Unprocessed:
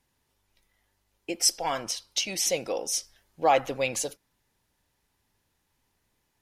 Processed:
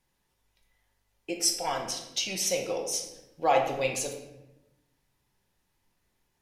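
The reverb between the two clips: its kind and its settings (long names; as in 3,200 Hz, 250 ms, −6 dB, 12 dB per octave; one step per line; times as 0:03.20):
rectangular room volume 390 cubic metres, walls mixed, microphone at 0.96 metres
level −3.5 dB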